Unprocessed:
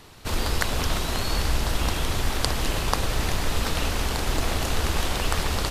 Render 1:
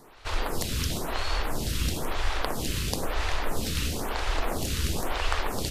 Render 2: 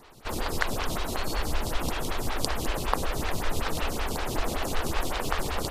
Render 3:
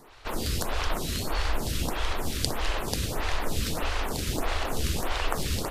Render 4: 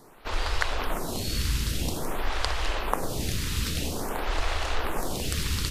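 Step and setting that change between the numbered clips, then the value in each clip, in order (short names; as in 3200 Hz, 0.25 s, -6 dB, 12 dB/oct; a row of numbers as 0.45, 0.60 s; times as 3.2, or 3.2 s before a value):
photocell phaser, rate: 1, 5.3, 1.6, 0.5 Hz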